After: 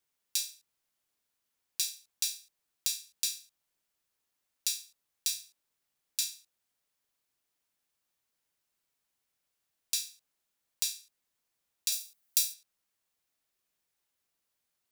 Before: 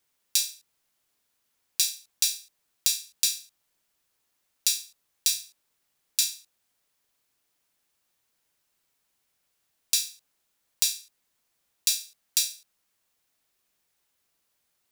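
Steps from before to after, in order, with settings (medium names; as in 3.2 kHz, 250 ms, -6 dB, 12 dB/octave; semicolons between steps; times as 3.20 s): 11.92–12.54 s: treble shelf 10 kHz +11.5 dB; trim -7.5 dB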